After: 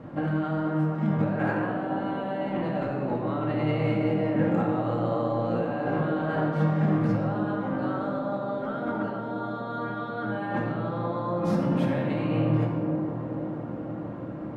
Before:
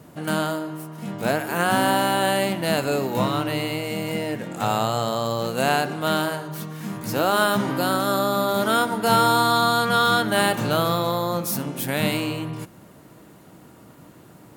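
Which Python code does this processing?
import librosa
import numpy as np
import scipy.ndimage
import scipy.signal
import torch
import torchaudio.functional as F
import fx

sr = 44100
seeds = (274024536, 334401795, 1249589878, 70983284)

p1 = scipy.signal.sosfilt(scipy.signal.butter(2, 1600.0, 'lowpass', fs=sr, output='sos'), x)
p2 = fx.over_compress(p1, sr, threshold_db=-31.0, ratio=-1.0)
p3 = p2 + fx.echo_wet_bandpass(p2, sr, ms=485, feedback_pct=69, hz=440.0, wet_db=-5.5, dry=0)
p4 = fx.room_shoebox(p3, sr, seeds[0], volume_m3=1700.0, walls='mixed', distance_m=2.2)
y = p4 * librosa.db_to_amplitude(-3.0)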